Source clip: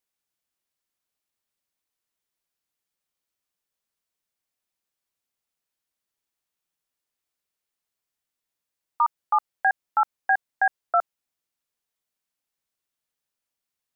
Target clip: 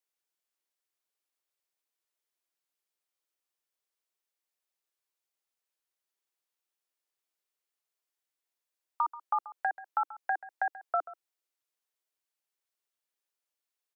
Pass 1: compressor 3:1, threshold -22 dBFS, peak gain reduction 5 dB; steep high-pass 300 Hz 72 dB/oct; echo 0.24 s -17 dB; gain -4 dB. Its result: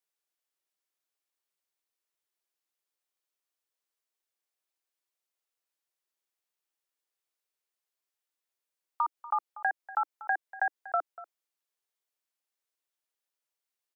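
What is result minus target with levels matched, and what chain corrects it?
echo 0.106 s late; 2000 Hz band +3.0 dB
compressor 3:1, threshold -22 dBFS, peak gain reduction 5 dB; dynamic EQ 1800 Hz, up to -8 dB, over -44 dBFS, Q 4.5; steep high-pass 300 Hz 72 dB/oct; echo 0.134 s -17 dB; gain -4 dB

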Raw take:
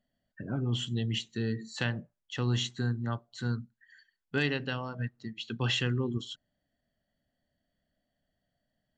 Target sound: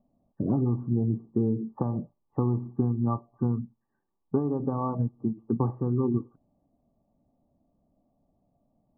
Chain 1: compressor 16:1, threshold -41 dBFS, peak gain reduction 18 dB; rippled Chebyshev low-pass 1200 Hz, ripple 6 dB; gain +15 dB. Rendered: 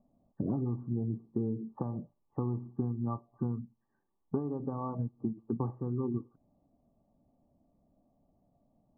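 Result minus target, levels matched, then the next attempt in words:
compressor: peak gain reduction +7.5 dB
compressor 16:1, threshold -33 dBFS, peak gain reduction 10.5 dB; rippled Chebyshev low-pass 1200 Hz, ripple 6 dB; gain +15 dB

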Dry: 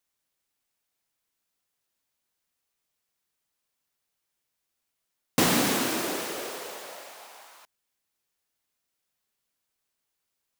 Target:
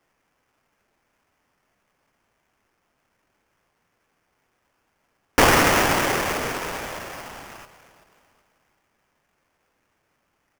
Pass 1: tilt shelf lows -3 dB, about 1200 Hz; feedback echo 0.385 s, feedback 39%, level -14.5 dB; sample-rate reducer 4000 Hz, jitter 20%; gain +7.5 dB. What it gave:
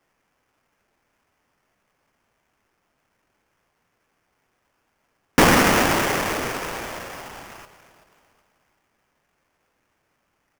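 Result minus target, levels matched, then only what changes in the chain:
250 Hz band +3.0 dB
add first: HPF 330 Hz 12 dB/oct

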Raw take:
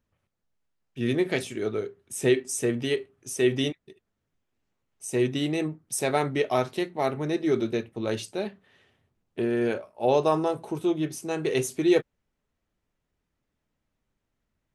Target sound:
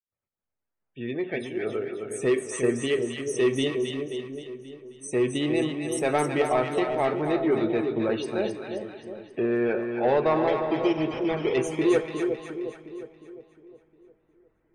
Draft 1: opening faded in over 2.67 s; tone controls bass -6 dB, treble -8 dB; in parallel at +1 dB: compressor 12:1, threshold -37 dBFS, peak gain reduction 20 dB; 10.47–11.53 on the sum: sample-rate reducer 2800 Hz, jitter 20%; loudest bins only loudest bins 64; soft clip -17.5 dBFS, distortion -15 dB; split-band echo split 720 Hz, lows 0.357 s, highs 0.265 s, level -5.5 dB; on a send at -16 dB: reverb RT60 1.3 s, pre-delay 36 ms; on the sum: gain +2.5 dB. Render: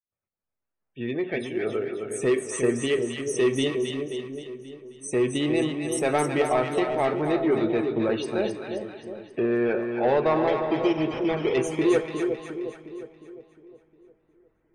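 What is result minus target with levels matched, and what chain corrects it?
compressor: peak gain reduction -8.5 dB
opening faded in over 2.67 s; tone controls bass -6 dB, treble -8 dB; in parallel at +1 dB: compressor 12:1, threshold -46.5 dBFS, peak gain reduction 29 dB; 10.47–11.53 on the sum: sample-rate reducer 2800 Hz, jitter 20%; loudest bins only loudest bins 64; soft clip -17.5 dBFS, distortion -16 dB; split-band echo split 720 Hz, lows 0.357 s, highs 0.265 s, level -5.5 dB; on a send at -16 dB: reverb RT60 1.3 s, pre-delay 36 ms; on the sum: gain +2.5 dB

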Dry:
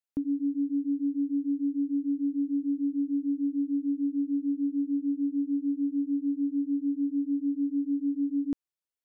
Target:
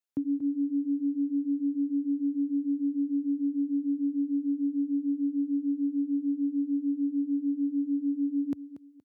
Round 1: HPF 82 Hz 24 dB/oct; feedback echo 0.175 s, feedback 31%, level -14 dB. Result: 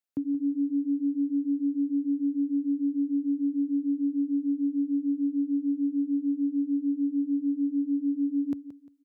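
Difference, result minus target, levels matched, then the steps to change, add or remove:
echo 60 ms early
change: feedback echo 0.235 s, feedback 31%, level -14 dB

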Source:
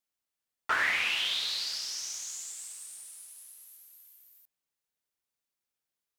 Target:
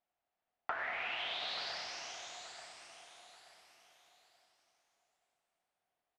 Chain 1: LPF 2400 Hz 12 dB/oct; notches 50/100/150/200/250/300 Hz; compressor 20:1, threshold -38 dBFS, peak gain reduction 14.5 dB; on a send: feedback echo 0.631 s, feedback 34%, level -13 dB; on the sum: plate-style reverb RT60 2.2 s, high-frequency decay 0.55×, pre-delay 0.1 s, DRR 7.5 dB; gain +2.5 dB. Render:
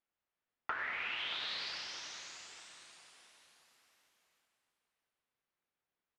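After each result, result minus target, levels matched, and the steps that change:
echo 0.251 s early; 1000 Hz band -3.0 dB
change: feedback echo 0.882 s, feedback 34%, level -13 dB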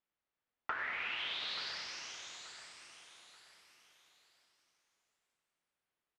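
1000 Hz band -2.5 dB
add after LPF: bell 710 Hz +14.5 dB 0.46 oct

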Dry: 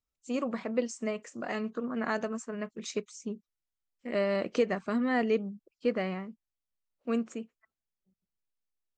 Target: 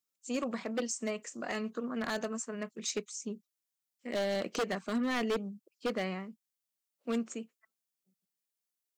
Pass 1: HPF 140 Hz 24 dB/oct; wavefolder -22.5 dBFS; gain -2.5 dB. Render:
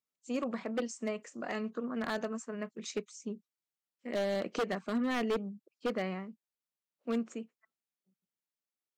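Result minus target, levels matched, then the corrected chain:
8000 Hz band -7.5 dB
HPF 140 Hz 24 dB/oct; high shelf 4100 Hz +11.5 dB; wavefolder -22.5 dBFS; gain -2.5 dB

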